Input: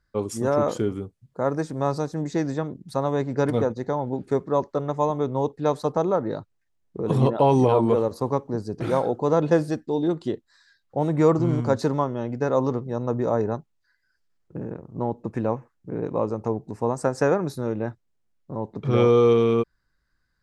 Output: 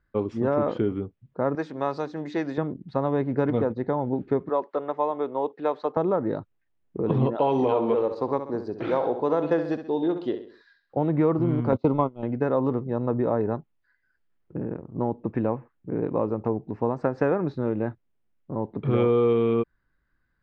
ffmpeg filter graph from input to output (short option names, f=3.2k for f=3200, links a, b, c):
-filter_complex "[0:a]asettb=1/sr,asplit=3[a][b][c];[a]atrim=end=1.554[d];[b]atrim=start=1.55:end=2.58,asetpts=PTS-STARTPTS,afade=t=in:d=0.004:c=qsin,afade=t=out:st=1.026:d=0.004:c=qsin,aemphasis=mode=production:type=riaa,bandreject=f=60:t=h:w=6,bandreject=f=120:t=h:w=6,bandreject=f=180:t=h:w=6,bandreject=f=240:t=h:w=6,bandreject=f=300:t=h:w=6[e];[c]atrim=start=2.576[f];[d][e]acrossfade=d=0.004:c1=hsin:c2=qsin[g];[g][f]acrossfade=d=0.004:c1=qsin:c2=hsin,asettb=1/sr,asplit=3[h][i][j];[h]atrim=end=4.494[k];[i]atrim=start=4.49:end=5.97,asetpts=PTS-STARTPTS,afade=t=in:d=0.004:c=qsin,afade=t=out:st=1.476:d=0.004:c=qsin,highpass=440,acompressor=mode=upward:threshold=-36dB:ratio=2.5:attack=3.2:release=140:knee=2.83:detection=peak[l];[j]atrim=start=5.966[m];[k][l]acrossfade=d=0.004:c1=hsin:c2=qsin[n];[n][m]acrossfade=d=0.004:c1=qsin:c2=hsin,asettb=1/sr,asplit=3[o][p][q];[o]atrim=end=7.354[r];[p]atrim=start=7.35:end=10.97,asetpts=PTS-STARTPTS,afade=t=in:d=0.004:c=qsin,afade=t=out:st=3.616:d=0.004:c=qsin,bass=f=250:g=-11,treble=f=4k:g=9,aecho=1:1:66|132|198|264:0.299|0.125|0.0527|0.0221,atrim=end_sample=159642[s];[q]atrim=start=10.966[t];[r][s]acrossfade=d=0.004:c1=hsin:c2=qsin[u];[u][t]acrossfade=d=0.004:c1=qsin:c2=hsin,asettb=1/sr,asplit=3[v][w][x];[v]atrim=end=11.724[y];[w]atrim=start=11.72:end=12.23,asetpts=PTS-STARTPTS,afade=t=in:d=0.004:c=qsin,afade=t=out:st=0.506:d=0.004:c=qsin,agate=range=-27dB:threshold=-26dB:ratio=16:release=100:detection=peak,acontrast=53,asuperstop=centerf=1700:order=4:qfactor=2.5[z];[x]atrim=start=12.226[aa];[y][z]acrossfade=d=0.004:c1=hsin:c2=qsin[ab];[ab][aa]acrossfade=d=0.004:c1=qsin:c2=hsin,lowpass=f=3.2k:w=0.5412,lowpass=f=3.2k:w=1.3066,equalizer=f=290:w=1.5:g=3.5,acompressor=threshold=-20dB:ratio=2.5"